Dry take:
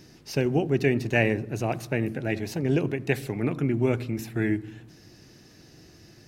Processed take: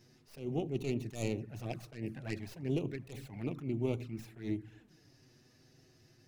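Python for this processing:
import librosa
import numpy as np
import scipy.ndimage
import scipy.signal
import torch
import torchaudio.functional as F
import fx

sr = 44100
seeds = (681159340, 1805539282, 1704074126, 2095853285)

y = fx.tracing_dist(x, sr, depth_ms=0.31)
y = fx.env_flanger(y, sr, rest_ms=9.2, full_db=-21.0)
y = fx.attack_slew(y, sr, db_per_s=140.0)
y = F.gain(torch.from_numpy(y), -9.0).numpy()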